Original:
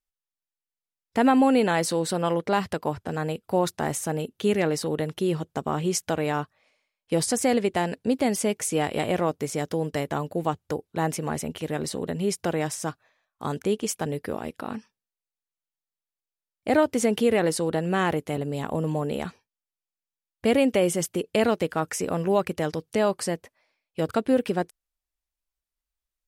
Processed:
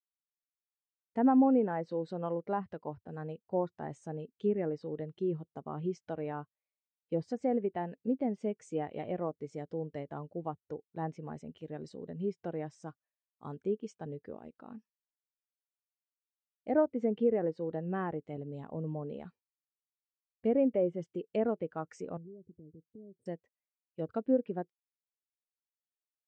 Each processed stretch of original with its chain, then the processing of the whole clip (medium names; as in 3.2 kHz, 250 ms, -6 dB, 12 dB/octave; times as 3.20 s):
22.17–23.26 s: inverse Chebyshev band-stop 1.6–4.2 kHz, stop band 80 dB + compression, threshold -32 dBFS
whole clip: steep low-pass 8.9 kHz; low-pass that closes with the level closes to 1.8 kHz, closed at -18 dBFS; spectral contrast expander 1.5:1; trim -7.5 dB